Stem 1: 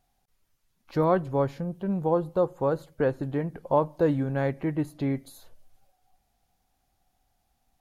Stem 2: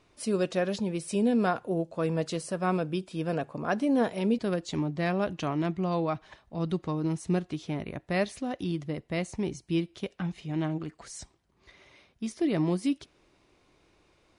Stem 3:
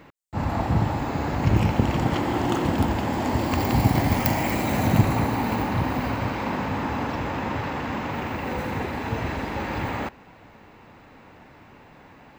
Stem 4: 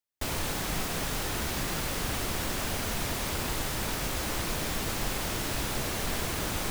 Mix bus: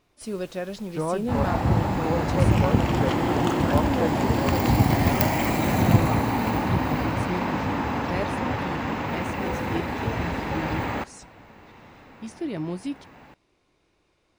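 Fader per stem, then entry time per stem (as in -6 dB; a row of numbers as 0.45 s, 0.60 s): -4.5 dB, -3.5 dB, +0.5 dB, -20.0 dB; 0.00 s, 0.00 s, 0.95 s, 0.00 s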